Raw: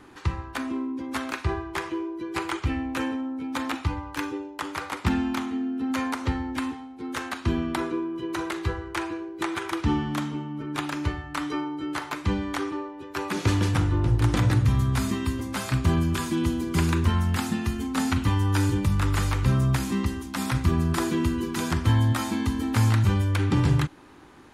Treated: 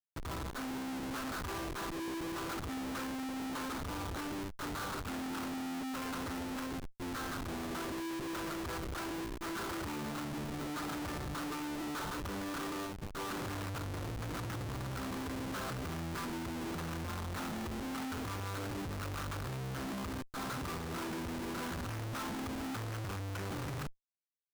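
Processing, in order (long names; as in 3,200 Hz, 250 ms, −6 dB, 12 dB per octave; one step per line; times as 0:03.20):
0:20.11–0:20.72: low-shelf EQ 320 Hz −11 dB
gain into a clipping stage and back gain 22.5 dB
low-pass with resonance 1,400 Hz, resonance Q 3.1
low-shelf EQ 130 Hz −7 dB
far-end echo of a speakerphone 350 ms, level −30 dB
comparator with hysteresis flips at −34.5 dBFS
brickwall limiter −39.5 dBFS, peak gain reduction 31 dB
level +1.5 dB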